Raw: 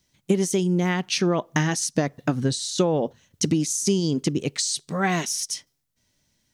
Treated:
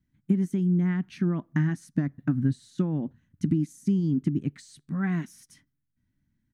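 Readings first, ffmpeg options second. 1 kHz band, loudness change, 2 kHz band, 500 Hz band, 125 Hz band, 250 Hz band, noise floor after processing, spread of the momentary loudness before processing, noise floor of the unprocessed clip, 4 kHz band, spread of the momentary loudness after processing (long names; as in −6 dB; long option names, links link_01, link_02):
−15.5 dB, −3.5 dB, −10.5 dB, −13.0 dB, 0.0 dB, −1.0 dB, −77 dBFS, 4 LU, −73 dBFS, below −20 dB, 8 LU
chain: -af "firequalizer=gain_entry='entry(280,0);entry(450,-21);entry(1600,-8);entry(2700,-20);entry(5400,-29);entry(12000,-18)':delay=0.05:min_phase=1"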